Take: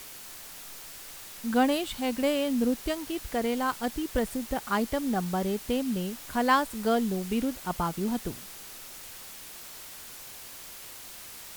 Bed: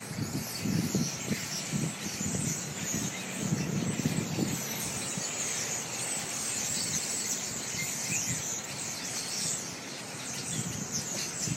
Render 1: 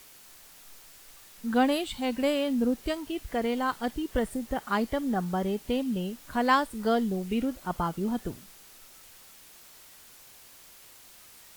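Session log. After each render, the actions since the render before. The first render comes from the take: noise print and reduce 8 dB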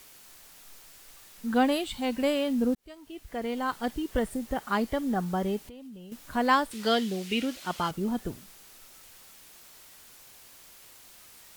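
2.75–3.85 fade in; 5.66–6.12 compressor 12:1, threshold -42 dBFS; 6.71–7.91 weighting filter D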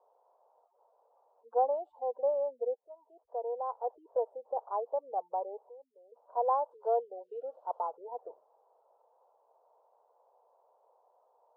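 spectral gate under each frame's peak -30 dB strong; elliptic band-pass 470–960 Hz, stop band 50 dB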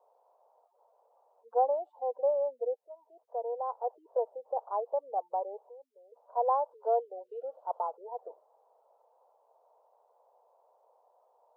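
HPF 320 Hz 12 dB/oct; bell 630 Hz +2.5 dB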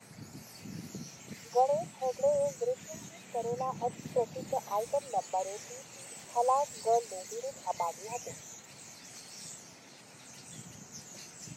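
add bed -14 dB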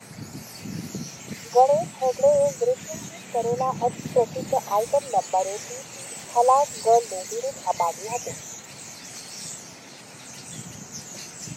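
gain +10 dB

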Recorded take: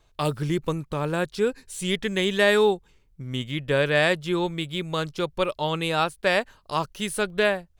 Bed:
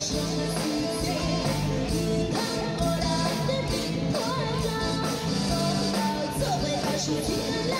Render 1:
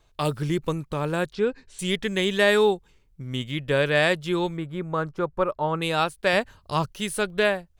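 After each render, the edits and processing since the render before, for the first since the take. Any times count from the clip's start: 1.33–1.79 air absorption 140 m; 4.57–5.82 resonant high shelf 2100 Hz -14 dB, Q 1.5; 6.33–6.91 bell 86 Hz +10.5 dB 2.1 oct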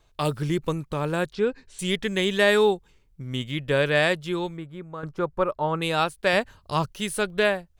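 3.94–5.03 fade out, to -11.5 dB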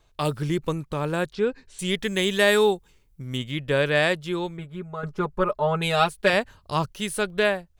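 1.96–3.38 high shelf 7500 Hz +9.5 dB; 4.58–6.3 comb 4.8 ms, depth 92%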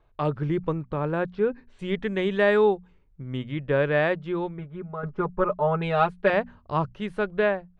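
LPF 1700 Hz 12 dB/oct; notches 60/120/180/240 Hz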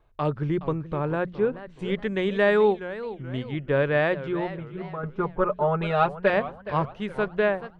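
warbling echo 0.426 s, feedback 38%, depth 208 cents, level -14 dB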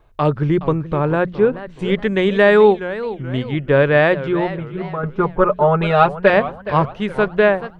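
gain +9 dB; limiter -1 dBFS, peak gain reduction 1 dB

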